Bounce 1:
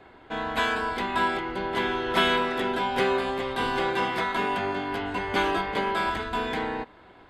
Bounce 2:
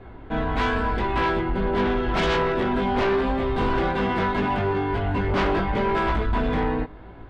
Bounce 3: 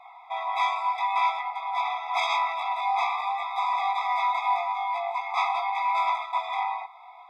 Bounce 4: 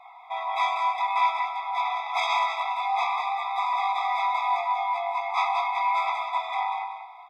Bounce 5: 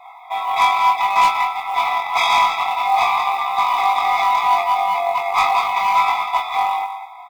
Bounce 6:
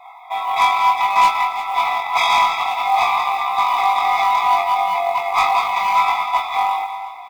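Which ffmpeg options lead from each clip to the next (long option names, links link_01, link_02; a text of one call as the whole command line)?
ffmpeg -i in.wav -af "flanger=delay=18:depth=2.3:speed=0.83,aemphasis=mode=reproduction:type=riaa,aeval=exprs='0.299*sin(PI/2*3.16*val(0)/0.299)':channel_layout=same,volume=-7.5dB" out.wav
ffmpeg -i in.wav -filter_complex "[0:a]asplit=2[link_01][link_02];[link_02]alimiter=level_in=1dB:limit=-24dB:level=0:latency=1:release=29,volume=-1dB,volume=-2.5dB[link_03];[link_01][link_03]amix=inputs=2:normalize=0,afftfilt=real='re*eq(mod(floor(b*sr/1024/660),2),1)':imag='im*eq(mod(floor(b*sr/1024/660),2),1)':win_size=1024:overlap=0.75" out.wav
ffmpeg -i in.wav -af "aecho=1:1:191|382|573:0.447|0.112|0.0279" out.wav
ffmpeg -i in.wav -filter_complex "[0:a]acrusher=bits=8:mode=log:mix=0:aa=0.000001,aeval=exprs='0.237*(cos(1*acos(clip(val(0)/0.237,-1,1)))-cos(1*PI/2))+0.0376*(cos(5*acos(clip(val(0)/0.237,-1,1)))-cos(5*PI/2))+0.0299*(cos(7*acos(clip(val(0)/0.237,-1,1)))-cos(7*PI/2))':channel_layout=same,asplit=2[link_01][link_02];[link_02]adelay=22,volume=-4dB[link_03];[link_01][link_03]amix=inputs=2:normalize=0,volume=6.5dB" out.wav
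ffmpeg -i in.wav -af "aecho=1:1:354|708|1062|1416:0.158|0.0777|0.0381|0.0186" out.wav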